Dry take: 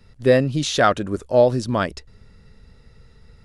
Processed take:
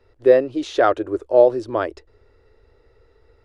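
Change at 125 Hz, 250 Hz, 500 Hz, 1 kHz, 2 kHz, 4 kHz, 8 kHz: -15.0 dB, -2.5 dB, +2.5 dB, -0.5 dB, -4.0 dB, n/a, under -10 dB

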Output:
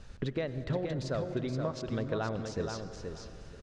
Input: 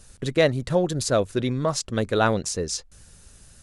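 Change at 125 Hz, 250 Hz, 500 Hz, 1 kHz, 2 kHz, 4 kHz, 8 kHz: -7.5, -9.0, -11.5, -13.0, -13.5, -14.5, -20.5 dB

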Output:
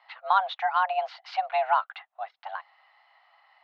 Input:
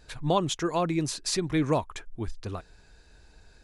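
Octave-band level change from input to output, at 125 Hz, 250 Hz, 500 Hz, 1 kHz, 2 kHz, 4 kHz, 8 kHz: under -40 dB, under -40 dB, -3.0 dB, +8.5 dB, +6.5 dB, -5.5 dB, under -30 dB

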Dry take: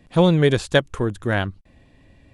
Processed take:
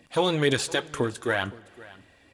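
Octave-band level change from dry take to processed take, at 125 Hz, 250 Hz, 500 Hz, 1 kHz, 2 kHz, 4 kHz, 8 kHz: -12.0, -8.5, -6.0, -3.0, -3.0, -1.5, +4.5 dB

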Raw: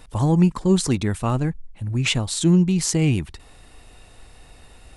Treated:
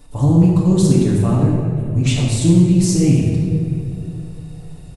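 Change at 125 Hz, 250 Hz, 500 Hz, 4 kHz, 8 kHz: +7.5, +6.5, +4.5, -1.5, +1.0 dB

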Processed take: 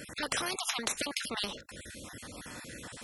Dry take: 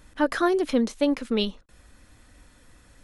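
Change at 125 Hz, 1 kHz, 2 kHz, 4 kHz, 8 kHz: n/a, -8.5 dB, -3.0 dB, 0.0 dB, +9.5 dB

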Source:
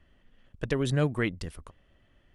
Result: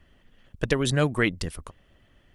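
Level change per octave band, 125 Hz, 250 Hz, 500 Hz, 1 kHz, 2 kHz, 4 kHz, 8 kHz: +2.0, +3.5, +4.0, +6.0, +7.0, +8.0, +9.5 dB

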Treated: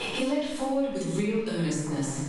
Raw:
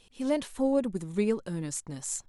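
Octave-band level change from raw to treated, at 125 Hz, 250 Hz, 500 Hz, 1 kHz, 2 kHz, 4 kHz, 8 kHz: +6.5, +2.0, +0.5, +6.0, +8.5, +10.5, -1.5 dB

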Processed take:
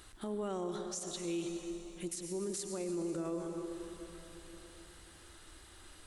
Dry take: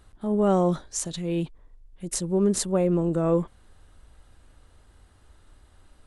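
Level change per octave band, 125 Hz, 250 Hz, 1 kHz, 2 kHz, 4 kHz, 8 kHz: -19.5, -13.5, -14.5, -7.0, -8.0, -10.0 dB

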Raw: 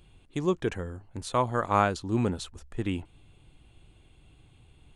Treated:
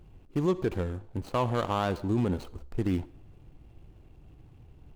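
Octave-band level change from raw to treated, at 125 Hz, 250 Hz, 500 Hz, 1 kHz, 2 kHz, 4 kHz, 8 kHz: +1.5, +1.0, -0.5, -4.5, -5.5, -2.5, -9.0 dB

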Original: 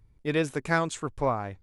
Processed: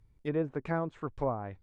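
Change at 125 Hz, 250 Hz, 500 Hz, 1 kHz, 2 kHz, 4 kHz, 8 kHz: -4.0 dB, -4.0 dB, -4.5 dB, -7.5 dB, -13.0 dB, under -15 dB, under -30 dB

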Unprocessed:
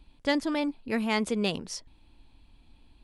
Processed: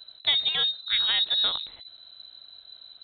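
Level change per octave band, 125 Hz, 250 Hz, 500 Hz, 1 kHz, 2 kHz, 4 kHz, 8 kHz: under -10 dB, under -25 dB, -16.0 dB, -5.5 dB, +0.5 dB, +16.0 dB, under -40 dB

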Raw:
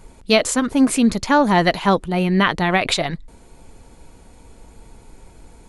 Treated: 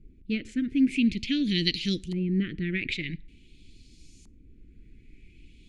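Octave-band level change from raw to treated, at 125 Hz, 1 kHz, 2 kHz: -8.0 dB, under -40 dB, -12.5 dB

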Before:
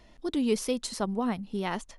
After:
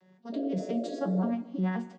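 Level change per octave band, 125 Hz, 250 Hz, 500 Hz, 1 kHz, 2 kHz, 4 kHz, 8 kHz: +6.0 dB, 0.0 dB, -3.5 dB, -4.5 dB, -5.5 dB, -13.5 dB, under -15 dB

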